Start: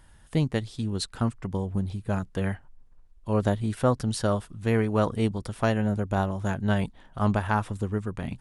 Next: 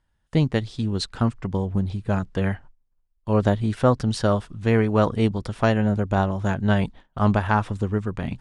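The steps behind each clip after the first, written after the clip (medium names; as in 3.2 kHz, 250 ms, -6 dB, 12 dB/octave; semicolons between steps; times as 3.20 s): gate with hold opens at -40 dBFS; low-pass 6.3 kHz 12 dB/octave; trim +4.5 dB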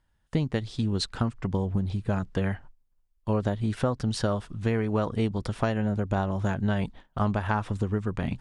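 compression, threshold -22 dBFS, peak gain reduction 10 dB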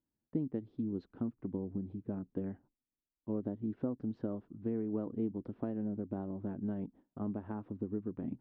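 band-pass filter 290 Hz, Q 2.7; distance through air 180 m; trim -2 dB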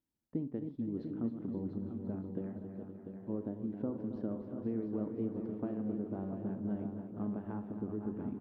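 backward echo that repeats 260 ms, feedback 70%, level -9 dB; multi-tap echo 43/67/270/695/858 ms -16.5/-16.5/-11/-8/-18 dB; trim -2 dB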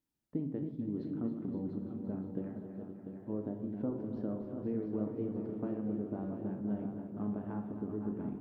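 reverberation RT60 0.70 s, pre-delay 7 ms, DRR 7 dB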